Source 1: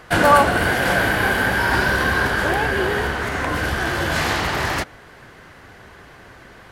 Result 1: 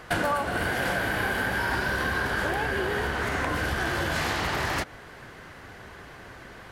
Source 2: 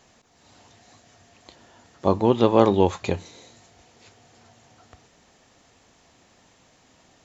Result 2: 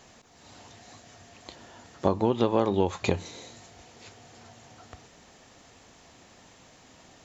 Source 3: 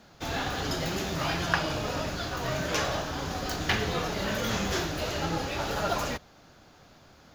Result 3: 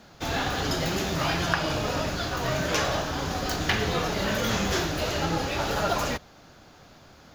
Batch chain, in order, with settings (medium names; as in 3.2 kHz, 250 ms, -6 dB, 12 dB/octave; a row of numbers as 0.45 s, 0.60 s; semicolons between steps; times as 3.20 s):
compression 6:1, threshold -23 dBFS; normalise loudness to -27 LUFS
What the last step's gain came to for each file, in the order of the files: -1.0 dB, +3.5 dB, +3.5 dB